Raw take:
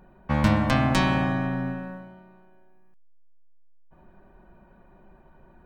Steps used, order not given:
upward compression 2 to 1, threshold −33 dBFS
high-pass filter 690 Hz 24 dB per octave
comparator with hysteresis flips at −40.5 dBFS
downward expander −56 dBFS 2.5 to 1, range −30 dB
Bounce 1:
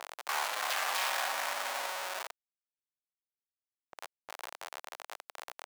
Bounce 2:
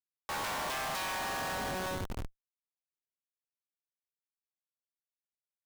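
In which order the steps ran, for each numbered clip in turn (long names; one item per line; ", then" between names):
upward compression, then comparator with hysteresis, then high-pass filter, then downward expander
high-pass filter, then downward expander, then upward compression, then comparator with hysteresis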